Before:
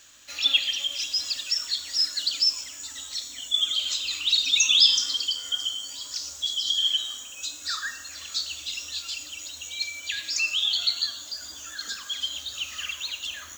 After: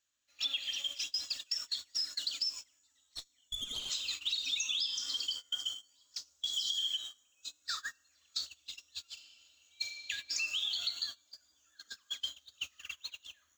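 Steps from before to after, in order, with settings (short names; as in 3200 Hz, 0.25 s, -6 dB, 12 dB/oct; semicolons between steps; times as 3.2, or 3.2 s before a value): 6.53–6.97 high shelf 3000 Hz +5.5 dB; gate -30 dBFS, range -25 dB; compressor 8:1, threshold -26 dBFS, peak gain reduction 13.5 dB; 2.79–3.9 tube stage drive 26 dB, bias 0.65; 9.12–10.06 reverb throw, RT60 2.7 s, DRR 2.5 dB; gain -5.5 dB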